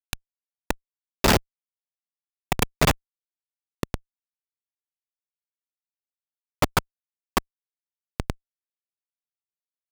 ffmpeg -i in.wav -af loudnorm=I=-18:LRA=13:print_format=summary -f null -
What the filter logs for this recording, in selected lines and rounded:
Input Integrated:    -27.5 LUFS
Input True Peak:      -7.7 dBTP
Input LRA:            10.1 LU
Input Threshold:     -37.9 LUFS